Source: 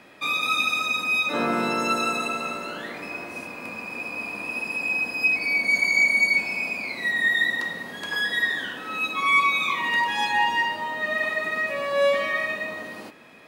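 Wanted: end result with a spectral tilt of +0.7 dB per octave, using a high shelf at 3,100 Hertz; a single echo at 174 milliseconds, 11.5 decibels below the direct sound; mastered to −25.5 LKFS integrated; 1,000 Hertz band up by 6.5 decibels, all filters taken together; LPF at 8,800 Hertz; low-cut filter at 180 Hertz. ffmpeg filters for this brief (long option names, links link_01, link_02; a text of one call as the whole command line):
ffmpeg -i in.wav -af "highpass=180,lowpass=8800,equalizer=frequency=1000:width_type=o:gain=8.5,highshelf=frequency=3100:gain=-5.5,aecho=1:1:174:0.266,volume=-4.5dB" out.wav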